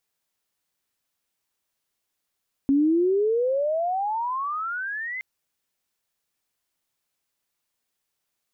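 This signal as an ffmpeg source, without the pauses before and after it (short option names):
-f lavfi -i "aevalsrc='pow(10,(-16-13*t/2.52)/20)*sin(2*PI*270*2.52/log(2100/270)*(exp(log(2100/270)*t/2.52)-1))':d=2.52:s=44100"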